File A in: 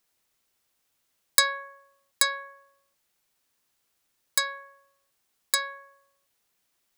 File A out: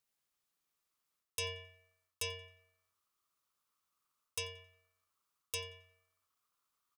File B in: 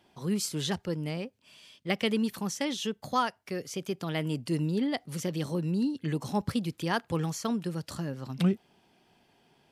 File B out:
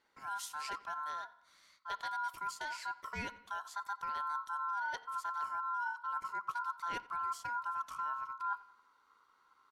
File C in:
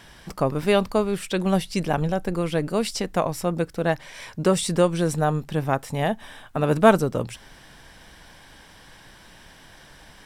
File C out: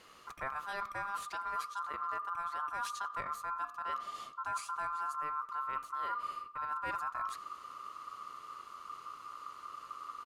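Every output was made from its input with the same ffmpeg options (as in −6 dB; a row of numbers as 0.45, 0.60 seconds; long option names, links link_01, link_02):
-filter_complex "[0:a]bandreject=frequency=247.2:width_type=h:width=4,bandreject=frequency=494.4:width_type=h:width=4,bandreject=frequency=741.6:width_type=h:width=4,bandreject=frequency=988.8:width_type=h:width=4,bandreject=frequency=1236:width_type=h:width=4,bandreject=frequency=1483.2:width_type=h:width=4,bandreject=frequency=1730.4:width_type=h:width=4,bandreject=frequency=1977.6:width_type=h:width=4,bandreject=frequency=2224.8:width_type=h:width=4,bandreject=frequency=2472:width_type=h:width=4,bandreject=frequency=2719.2:width_type=h:width=4,bandreject=frequency=2966.4:width_type=h:width=4,bandreject=frequency=3213.6:width_type=h:width=4,bandreject=frequency=3460.8:width_type=h:width=4,bandreject=frequency=3708:width_type=h:width=4,bandreject=frequency=3955.2:width_type=h:width=4,bandreject=frequency=4202.4:width_type=h:width=4,asubboost=boost=8.5:cutoff=180,areverse,acompressor=threshold=-24dB:ratio=16,areverse,aeval=exprs='val(0)*sin(2*PI*1200*n/s)':channel_layout=same,asplit=2[link_01][link_02];[link_02]adelay=89,lowpass=frequency=4800:poles=1,volume=-20.5dB,asplit=2[link_03][link_04];[link_04]adelay=89,lowpass=frequency=4800:poles=1,volume=0.5,asplit=2[link_05][link_06];[link_06]adelay=89,lowpass=frequency=4800:poles=1,volume=0.5,asplit=2[link_07][link_08];[link_08]adelay=89,lowpass=frequency=4800:poles=1,volume=0.5[link_09];[link_01][link_03][link_05][link_07][link_09]amix=inputs=5:normalize=0,volume=-8dB"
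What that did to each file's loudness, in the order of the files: −16.5, −7.5, −16.0 LU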